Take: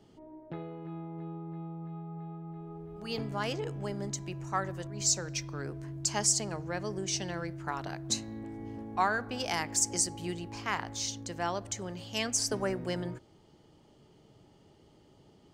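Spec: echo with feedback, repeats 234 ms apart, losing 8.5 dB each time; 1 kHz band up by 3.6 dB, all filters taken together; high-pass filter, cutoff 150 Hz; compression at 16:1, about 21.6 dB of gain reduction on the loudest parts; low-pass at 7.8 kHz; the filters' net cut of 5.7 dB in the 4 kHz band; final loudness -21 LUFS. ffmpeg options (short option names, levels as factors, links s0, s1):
-af "highpass=150,lowpass=7800,equalizer=f=1000:t=o:g=5,equalizer=f=4000:t=o:g=-8,acompressor=threshold=0.01:ratio=16,aecho=1:1:234|468|702|936:0.376|0.143|0.0543|0.0206,volume=14.1"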